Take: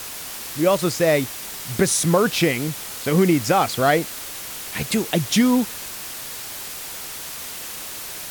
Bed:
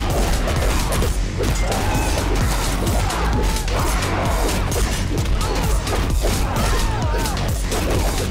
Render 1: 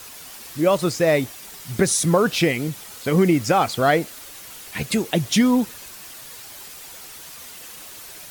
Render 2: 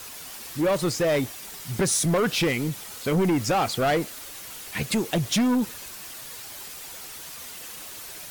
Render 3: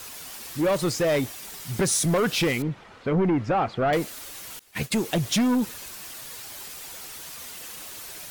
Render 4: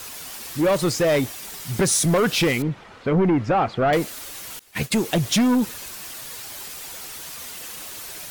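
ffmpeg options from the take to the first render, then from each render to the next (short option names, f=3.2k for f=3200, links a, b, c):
-af "afftdn=nr=8:nf=-34"
-af "asoftclip=type=tanh:threshold=-18dB"
-filter_complex "[0:a]asettb=1/sr,asplit=3[a][b][c];[a]atrim=end=2.624[d];[b]atrim=start=2.62:end=3.93,asetpts=PTS-STARTPTS,afade=t=in:d=0.004:c=qsin,afade=t=out:st=1.306:d=0.004:c=qsin,lowpass=1.9k[e];[c]atrim=start=3.926[f];[d][e]acrossfade=d=0.004:c1=hsin:c2=qsin[g];[g][f]acrossfade=d=0.004:c1=qsin:c2=hsin,asettb=1/sr,asplit=3[h][i][j];[h]atrim=end=4.594[k];[i]atrim=start=4.59:end=5,asetpts=PTS-STARTPTS,afade=t=in:d=0.004:c=qsin,afade=t=out:st=0.406:d=0.004:c=qsin,agate=range=-33dB:threshold=-29dB:ratio=3:release=100:detection=peak[l];[j]atrim=start=4.996[m];[k][l]acrossfade=d=0.004:c1=hsin:c2=qsin[n];[n][m]acrossfade=d=0.004:c1=qsin:c2=hsin"
-af "volume=3.5dB"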